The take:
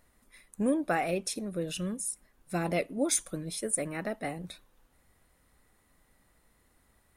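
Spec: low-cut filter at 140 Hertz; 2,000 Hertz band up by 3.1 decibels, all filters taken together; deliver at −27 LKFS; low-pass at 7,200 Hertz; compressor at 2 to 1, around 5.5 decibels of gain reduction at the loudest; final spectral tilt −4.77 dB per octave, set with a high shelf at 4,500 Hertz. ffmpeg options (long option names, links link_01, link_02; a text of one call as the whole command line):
ffmpeg -i in.wav -af "highpass=140,lowpass=7200,equalizer=frequency=2000:width_type=o:gain=5.5,highshelf=frequency=4500:gain=-9,acompressor=threshold=-33dB:ratio=2,volume=10dB" out.wav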